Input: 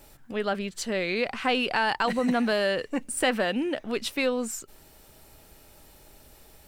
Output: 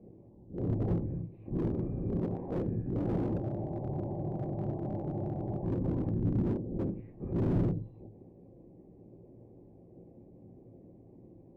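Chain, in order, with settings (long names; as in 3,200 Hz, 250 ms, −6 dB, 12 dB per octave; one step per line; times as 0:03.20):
every partial snapped to a pitch grid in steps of 3 semitones
wrong playback speed 78 rpm record played at 45 rpm
brickwall limiter −21.5 dBFS, peak gain reduction 11.5 dB
transient designer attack −2 dB, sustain +2 dB
linear-prediction vocoder at 8 kHz whisper
inverse Chebyshev low-pass filter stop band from 1,300 Hz, stop band 50 dB
convolution reverb RT60 0.40 s, pre-delay 3 ms, DRR 8 dB
frozen spectrum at 0:03.44, 2.20 s
slew-rate limiting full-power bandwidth 4.8 Hz
level +7.5 dB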